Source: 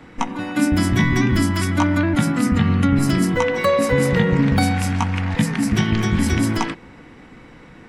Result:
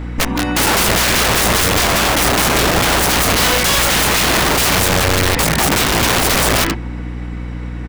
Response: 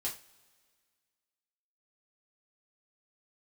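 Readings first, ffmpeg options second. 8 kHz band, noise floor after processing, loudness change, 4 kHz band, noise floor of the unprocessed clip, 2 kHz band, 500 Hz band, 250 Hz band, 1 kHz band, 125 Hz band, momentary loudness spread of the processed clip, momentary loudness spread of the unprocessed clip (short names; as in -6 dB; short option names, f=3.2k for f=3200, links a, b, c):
+16.5 dB, -25 dBFS, +6.0 dB, +15.5 dB, -44 dBFS, +9.5 dB, +4.0 dB, -3.0 dB, +9.0 dB, -1.5 dB, 10 LU, 5 LU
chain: -filter_complex "[0:a]asplit=2[a][b];[b]adelay=126,lowpass=f=830:p=1,volume=-22.5dB,asplit=2[c][d];[d]adelay=126,lowpass=f=830:p=1,volume=0.51,asplit=2[e][f];[f]adelay=126,lowpass=f=830:p=1,volume=0.51[g];[a][c][e][g]amix=inputs=4:normalize=0,aeval=exprs='(mod(7.94*val(0)+1,2)-1)/7.94':c=same,aeval=exprs='val(0)+0.0251*(sin(2*PI*60*n/s)+sin(2*PI*2*60*n/s)/2+sin(2*PI*3*60*n/s)/3+sin(2*PI*4*60*n/s)/4+sin(2*PI*5*60*n/s)/5)':c=same,volume=8.5dB"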